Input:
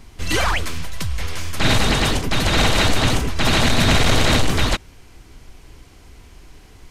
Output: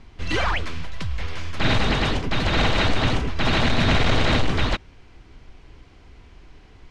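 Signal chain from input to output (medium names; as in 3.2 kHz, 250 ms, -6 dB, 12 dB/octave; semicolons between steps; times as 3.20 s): low-pass 3.9 kHz 12 dB/octave; trim -3 dB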